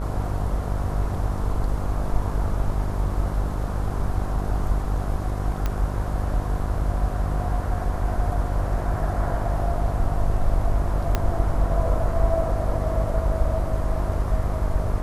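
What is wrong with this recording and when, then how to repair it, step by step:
buzz 50 Hz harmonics 27 -27 dBFS
5.66 pop -12 dBFS
11.15 pop -8 dBFS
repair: de-click; de-hum 50 Hz, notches 27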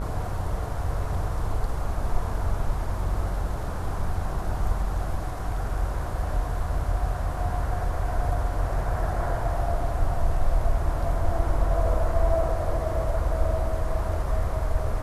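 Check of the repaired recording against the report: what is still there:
11.15 pop

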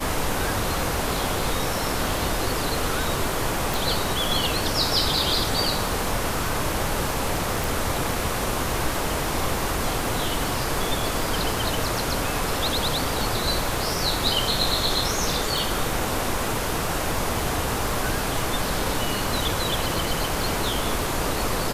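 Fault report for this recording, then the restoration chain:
crackle 60/s -32 dBFS
3.74 pop
7.64 pop
15.58 pop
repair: de-click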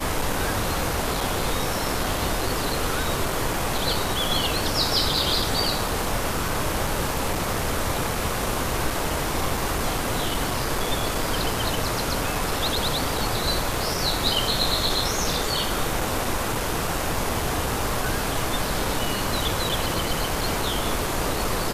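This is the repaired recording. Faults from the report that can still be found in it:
none

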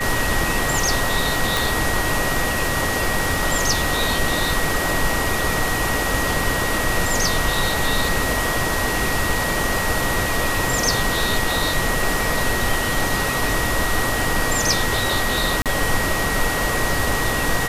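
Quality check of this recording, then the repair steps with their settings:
tone 1900 Hz -25 dBFS
1.57 pop
15.62–15.66 gap 37 ms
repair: de-click; notch 1900 Hz, Q 30; interpolate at 15.62, 37 ms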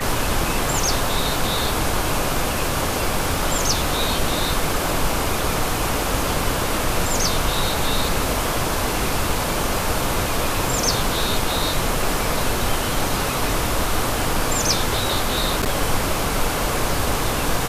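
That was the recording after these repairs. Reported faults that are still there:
none

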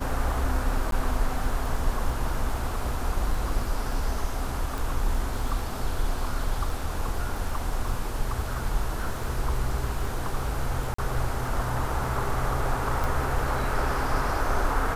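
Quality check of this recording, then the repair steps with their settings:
crackle 24/s -33 dBFS
0.91–0.92 gap 12 ms
4.78 pop
10.94–10.98 gap 44 ms
13.04 pop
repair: de-click; interpolate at 0.91, 12 ms; interpolate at 10.94, 44 ms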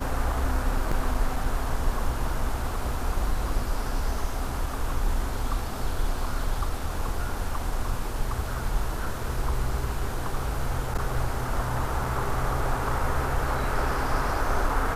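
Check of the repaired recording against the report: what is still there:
none

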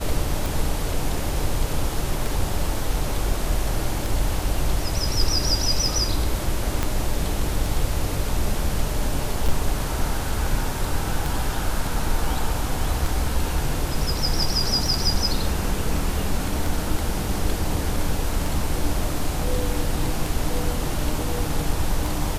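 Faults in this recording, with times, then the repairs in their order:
tick 33 1/3 rpm
6.83 pop -8 dBFS
9.48–9.49 gap 6.1 ms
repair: de-click; interpolate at 9.48, 6.1 ms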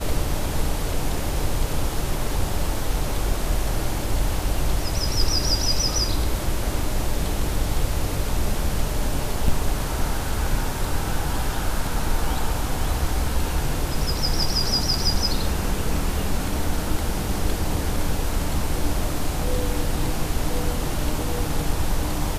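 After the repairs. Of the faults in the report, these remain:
6.83 pop

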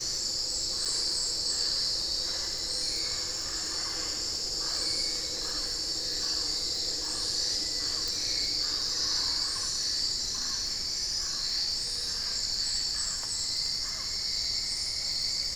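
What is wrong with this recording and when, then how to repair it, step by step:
crackle 43/s -35 dBFS
0.85–0.86 gap 6.7 ms
8.08 pop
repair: de-click; interpolate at 0.85, 6.7 ms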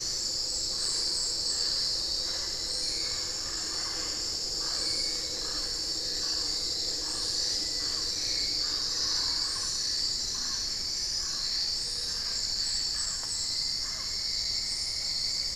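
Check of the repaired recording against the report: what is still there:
8.08 pop

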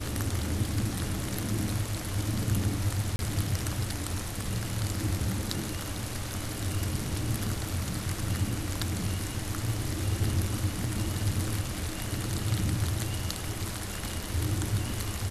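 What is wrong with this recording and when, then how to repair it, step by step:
3.16–3.19 gap 31 ms
10.84 gap 2.5 ms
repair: interpolate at 3.16, 31 ms; interpolate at 10.84, 2.5 ms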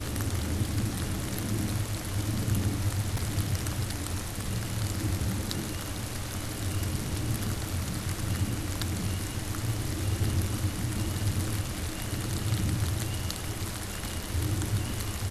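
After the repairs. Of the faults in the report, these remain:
none

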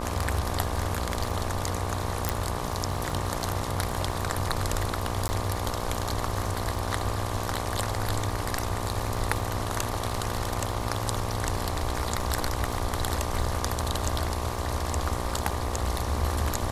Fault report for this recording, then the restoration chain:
buzz 60 Hz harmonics 20 -34 dBFS
crackle 55/s -36 dBFS
2.29 pop
5.28–5.29 gap 10 ms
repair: de-click; de-hum 60 Hz, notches 20; interpolate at 5.28, 10 ms

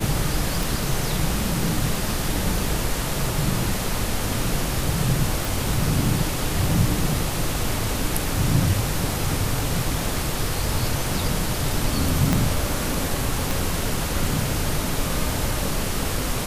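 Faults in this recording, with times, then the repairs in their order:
0.63 pop
5.45 pop
12.33 pop -5 dBFS
13.51 pop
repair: de-click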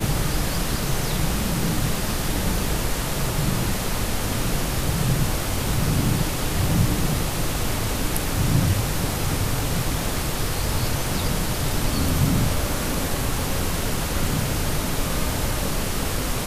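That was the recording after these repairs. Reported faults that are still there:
12.33 pop
13.51 pop

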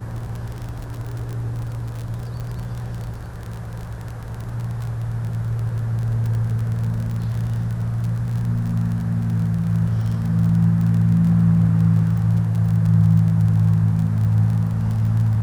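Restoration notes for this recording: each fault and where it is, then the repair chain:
crackle 33/s -26 dBFS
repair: de-click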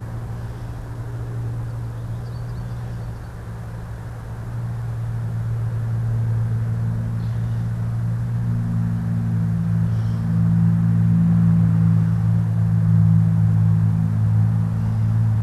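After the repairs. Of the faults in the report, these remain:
none

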